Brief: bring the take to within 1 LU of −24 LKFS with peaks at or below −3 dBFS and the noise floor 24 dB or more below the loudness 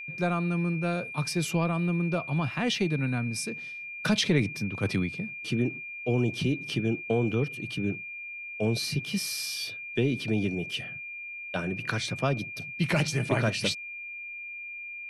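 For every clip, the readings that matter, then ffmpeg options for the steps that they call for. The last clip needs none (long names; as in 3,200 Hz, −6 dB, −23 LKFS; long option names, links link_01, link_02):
interfering tone 2,400 Hz; level of the tone −37 dBFS; integrated loudness −29.5 LKFS; sample peak −11.5 dBFS; target loudness −24.0 LKFS
→ -af "bandreject=frequency=2400:width=30"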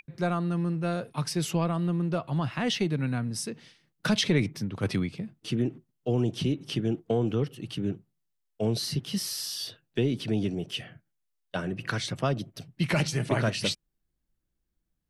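interfering tone none found; integrated loudness −29.5 LKFS; sample peak −12.0 dBFS; target loudness −24.0 LKFS
→ -af "volume=5.5dB"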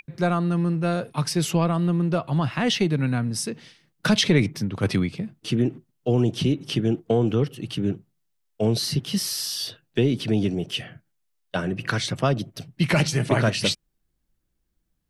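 integrated loudness −24.0 LKFS; sample peak −6.5 dBFS; background noise floor −73 dBFS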